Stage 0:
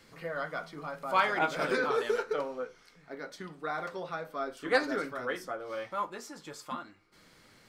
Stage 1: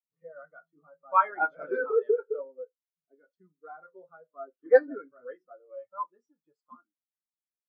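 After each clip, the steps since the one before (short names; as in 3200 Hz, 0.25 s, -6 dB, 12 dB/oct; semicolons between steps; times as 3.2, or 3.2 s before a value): spectral expander 2.5:1; gain +7 dB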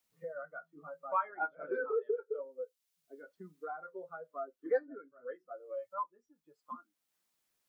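three-band squash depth 70%; gain -5.5 dB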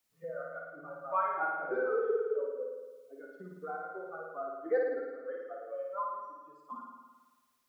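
flutter echo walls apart 9.4 m, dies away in 1.3 s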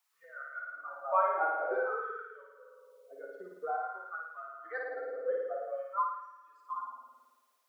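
LFO high-pass sine 0.51 Hz 480–1700 Hz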